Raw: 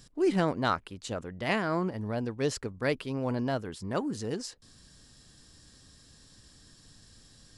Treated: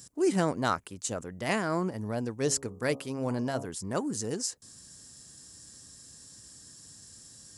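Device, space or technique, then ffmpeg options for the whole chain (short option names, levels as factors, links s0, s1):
budget condenser microphone: -filter_complex "[0:a]asplit=3[s0][s1][s2];[s0]afade=t=out:st=2.45:d=0.02[s3];[s1]bandreject=f=68.59:t=h:w=4,bandreject=f=137.18:t=h:w=4,bandreject=f=205.77:t=h:w=4,bandreject=f=274.36:t=h:w=4,bandreject=f=342.95:t=h:w=4,bandreject=f=411.54:t=h:w=4,bandreject=f=480.13:t=h:w=4,bandreject=f=548.72:t=h:w=4,bandreject=f=617.31:t=h:w=4,bandreject=f=685.9:t=h:w=4,bandreject=f=754.49:t=h:w=4,bandreject=f=823.08:t=h:w=4,bandreject=f=891.67:t=h:w=4,bandreject=f=960.26:t=h:w=4,bandreject=f=1028.85:t=h:w=4,bandreject=f=1097.44:t=h:w=4,bandreject=f=1166.03:t=h:w=4,bandreject=f=1234.62:t=h:w=4,afade=t=in:st=2.45:d=0.02,afade=t=out:st=3.65:d=0.02[s4];[s2]afade=t=in:st=3.65:d=0.02[s5];[s3][s4][s5]amix=inputs=3:normalize=0,highpass=76,highshelf=f=5200:t=q:w=1.5:g=9.5"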